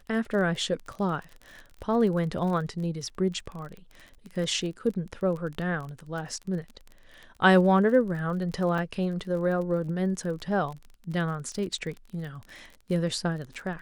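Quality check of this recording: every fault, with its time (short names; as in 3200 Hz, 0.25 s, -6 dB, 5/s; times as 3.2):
crackle 32/s -35 dBFS
8.78 gap 2.2 ms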